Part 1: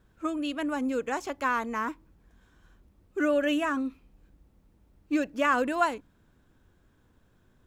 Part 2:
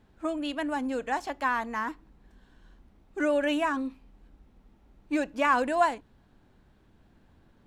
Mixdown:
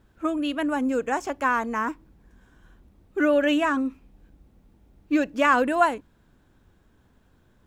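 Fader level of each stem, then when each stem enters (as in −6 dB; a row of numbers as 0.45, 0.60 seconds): +2.0, −5.0 decibels; 0.00, 0.00 seconds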